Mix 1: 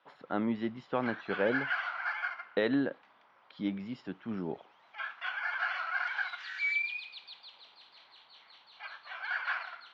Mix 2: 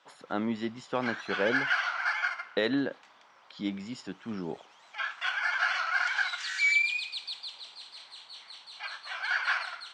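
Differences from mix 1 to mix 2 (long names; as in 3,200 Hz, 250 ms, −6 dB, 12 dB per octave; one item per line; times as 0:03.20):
background +3.0 dB
master: remove high-frequency loss of the air 280 metres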